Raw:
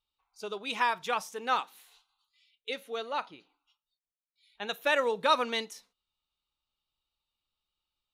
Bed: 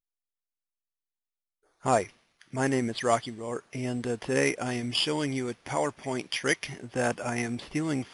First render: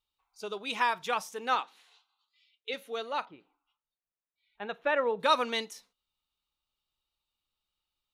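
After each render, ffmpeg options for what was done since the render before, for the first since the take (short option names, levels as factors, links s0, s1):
-filter_complex "[0:a]asettb=1/sr,asplit=3[s0][s1][s2];[s0]atrim=end=1.554[s3];[s1]atrim=start=1.55:end=2.74,asetpts=PTS-STARTPTS,afade=t=in:d=0.004:c=qsin,afade=t=out:st=1.186:d=0.004:c=qsin,highpass=210,lowpass=5300[s4];[s2]atrim=start=2.736[s5];[s3][s4]acrossfade=d=0.004:c1=hsin:c2=qsin[s6];[s6][s5]acrossfade=d=0.004:c1=qsin:c2=hsin,asettb=1/sr,asplit=3[s7][s8][s9];[s7]atrim=end=3.254[s10];[s8]atrim=start=3.25:end=5.2,asetpts=PTS-STARTPTS,afade=t=in:d=0.004:c=qsin,afade=t=out:st=1.946:d=0.004:c=qsin,lowpass=1900[s11];[s9]atrim=start=5.196[s12];[s10][s11]acrossfade=d=0.004:c1=hsin:c2=qsin[s13];[s13][s12]acrossfade=d=0.004:c1=qsin:c2=hsin"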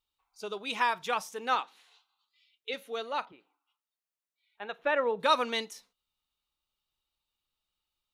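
-filter_complex "[0:a]asettb=1/sr,asplit=3[s0][s1][s2];[s0]atrim=end=3.324[s3];[s1]atrim=start=3.32:end=4.79,asetpts=PTS-STARTPTS,afade=t=in:d=0.004:c=qsin,afade=t=out:st=1.466:d=0.004:c=qsin,highpass=f=450:p=1[s4];[s2]atrim=start=4.786[s5];[s3][s4]acrossfade=d=0.004:c1=hsin:c2=qsin[s6];[s6][s5]acrossfade=d=0.004:c1=qsin:c2=hsin"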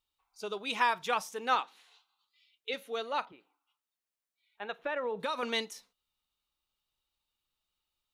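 -filter_complex "[0:a]asettb=1/sr,asplit=3[s0][s1][s2];[s0]atrim=end=4.764[s3];[s1]atrim=start=4.76:end=5.43,asetpts=PTS-STARTPTS,afade=t=in:d=0.004:c=qsin,afade=t=out:st=0.666:d=0.004:c=qsin,acompressor=threshold=0.0316:ratio=6:attack=3.2:release=140:knee=1:detection=peak[s4];[s2]atrim=start=5.426[s5];[s3][s4]acrossfade=d=0.004:c1=hsin:c2=qsin[s6];[s6][s5]acrossfade=d=0.004:c1=qsin:c2=hsin"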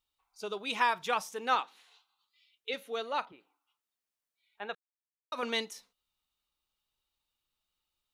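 -filter_complex "[0:a]asplit=3[s0][s1][s2];[s0]atrim=end=4.75,asetpts=PTS-STARTPTS,afade=t=out:st=4.746:d=0.004:c=hsin[s3];[s1]atrim=start=4.75:end=5.32,asetpts=PTS-STARTPTS,volume=0[s4];[s2]atrim=start=5.32,asetpts=PTS-STARTPTS,afade=t=in:d=0.004:c=hsin[s5];[s3][s4][s5]concat=n=3:v=0:a=1"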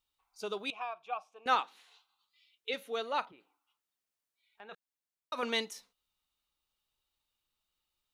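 -filter_complex "[0:a]asettb=1/sr,asplit=3[s0][s1][s2];[s0]atrim=end=0.704[s3];[s1]atrim=start=0.7:end=1.46,asetpts=PTS-STARTPTS,afade=t=in:d=0.004:c=qsin,afade=t=out:st=0.756:d=0.004:c=qsin,asplit=3[s4][s5][s6];[s4]bandpass=f=730:t=q:w=8,volume=1[s7];[s5]bandpass=f=1090:t=q:w=8,volume=0.501[s8];[s6]bandpass=f=2440:t=q:w=8,volume=0.355[s9];[s7][s8][s9]amix=inputs=3:normalize=0[s10];[s2]atrim=start=1.456[s11];[s3][s10]acrossfade=d=0.004:c1=hsin:c2=qsin[s12];[s12][s11]acrossfade=d=0.004:c1=qsin:c2=hsin,asplit=3[s13][s14][s15];[s13]afade=t=out:st=3.3:d=0.02[s16];[s14]acompressor=threshold=0.00178:ratio=2:attack=3.2:release=140:knee=1:detection=peak,afade=t=in:st=3.3:d=0.02,afade=t=out:st=4.71:d=0.02[s17];[s15]afade=t=in:st=4.71:d=0.02[s18];[s16][s17][s18]amix=inputs=3:normalize=0"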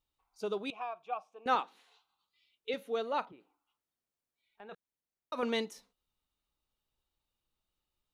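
-af "tiltshelf=f=840:g=5.5"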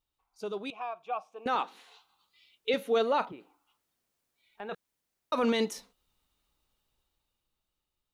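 -af "alimiter=level_in=1.68:limit=0.0631:level=0:latency=1:release=14,volume=0.596,dynaudnorm=f=240:g=11:m=3.16"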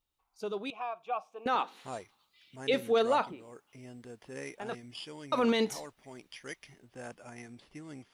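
-filter_complex "[1:a]volume=0.141[s0];[0:a][s0]amix=inputs=2:normalize=0"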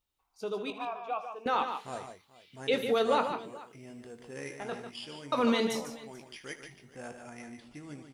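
-filter_complex "[0:a]asplit=2[s0][s1];[s1]adelay=21,volume=0.299[s2];[s0][s2]amix=inputs=2:normalize=0,aecho=1:1:77|147|169|432:0.2|0.398|0.119|0.106"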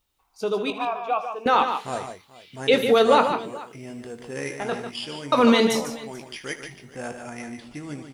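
-af "volume=3.16"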